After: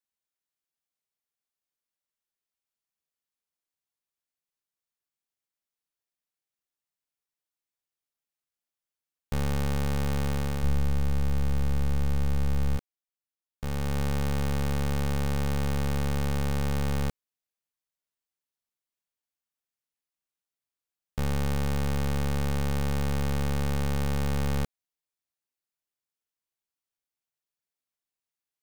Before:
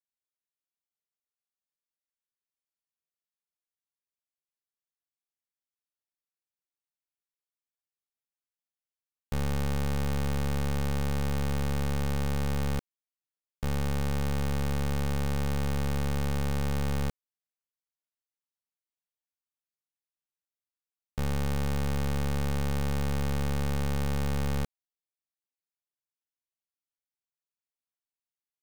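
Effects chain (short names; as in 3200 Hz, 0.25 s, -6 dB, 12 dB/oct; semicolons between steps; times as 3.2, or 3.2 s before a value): 10.63–12.77 low shelf 120 Hz +11 dB; vocal rider 0.5 s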